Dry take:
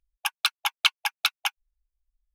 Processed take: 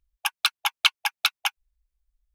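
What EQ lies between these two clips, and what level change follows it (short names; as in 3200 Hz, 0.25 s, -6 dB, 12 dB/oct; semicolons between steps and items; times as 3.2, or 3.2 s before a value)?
bell 73 Hz +8.5 dB 1.2 oct; +1.5 dB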